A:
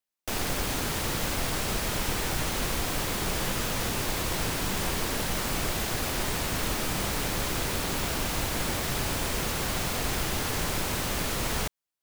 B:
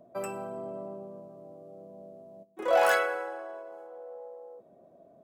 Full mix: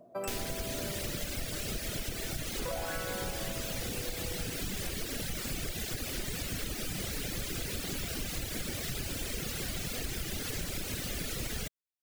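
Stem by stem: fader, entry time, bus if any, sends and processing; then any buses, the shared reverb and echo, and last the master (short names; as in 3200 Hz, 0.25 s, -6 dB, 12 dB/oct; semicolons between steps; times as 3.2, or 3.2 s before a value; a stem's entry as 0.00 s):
+0.5 dB, 0.00 s, no send, bell 970 Hz -13.5 dB 0.9 oct; reverb removal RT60 1.5 s
0.0 dB, 0.00 s, no send, compressor, threshold -30 dBFS, peak gain reduction 11 dB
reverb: off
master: compressor, threshold -32 dBFS, peak gain reduction 7.5 dB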